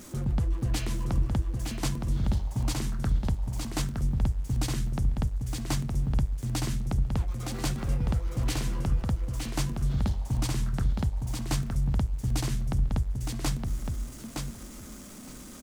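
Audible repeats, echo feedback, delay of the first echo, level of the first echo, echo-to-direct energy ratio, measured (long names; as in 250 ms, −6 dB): 2, 15%, 915 ms, −4.5 dB, −4.5 dB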